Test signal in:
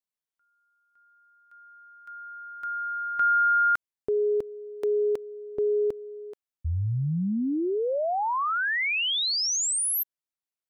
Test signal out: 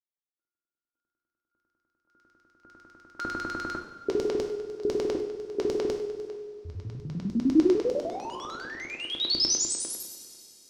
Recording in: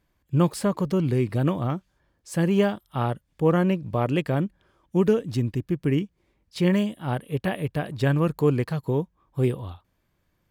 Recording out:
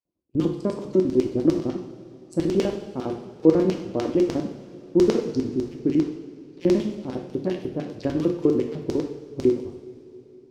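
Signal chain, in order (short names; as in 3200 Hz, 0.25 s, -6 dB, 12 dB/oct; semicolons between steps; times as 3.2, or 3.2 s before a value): Wiener smoothing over 25 samples; on a send: thin delay 0.144 s, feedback 48%, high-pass 4700 Hz, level -11.5 dB; on the sum: LFO band-pass square 10 Hz 340–5300 Hz; gate with hold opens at -59 dBFS, hold 53 ms, range -6 dB; two-slope reverb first 0.69 s, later 3.5 s, from -16 dB, DRR 2 dB; gain +7.5 dB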